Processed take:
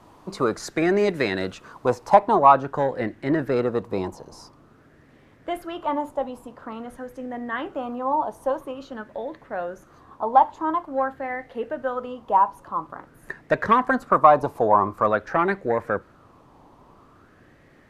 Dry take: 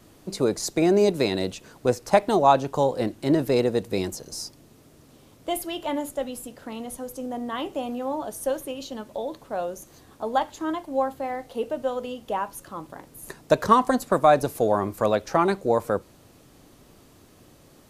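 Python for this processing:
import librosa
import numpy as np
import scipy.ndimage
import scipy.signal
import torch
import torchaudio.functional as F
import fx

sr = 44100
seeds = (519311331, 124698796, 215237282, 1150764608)

y = fx.lowpass(x, sr, hz=fx.steps((0.0, 3700.0), (2.15, 1400.0)), slope=6)
y = 10.0 ** (-9.0 / 20.0) * np.tanh(y / 10.0 ** (-9.0 / 20.0))
y = fx.bell_lfo(y, sr, hz=0.48, low_hz=930.0, high_hz=1900.0, db=16)
y = y * librosa.db_to_amplitude(-1.0)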